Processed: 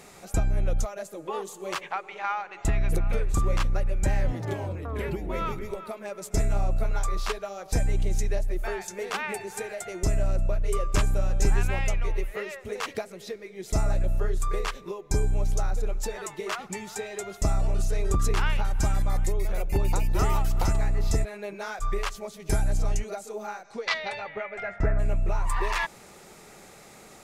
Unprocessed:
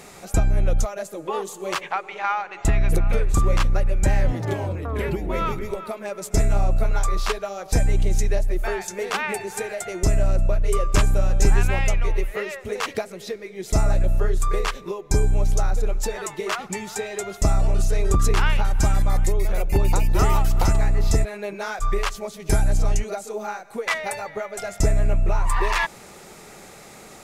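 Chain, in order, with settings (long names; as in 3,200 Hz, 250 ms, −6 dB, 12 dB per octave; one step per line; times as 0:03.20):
0:23.63–0:24.98: low-pass with resonance 6,100 Hz → 1,400 Hz, resonance Q 3.1
level −5.5 dB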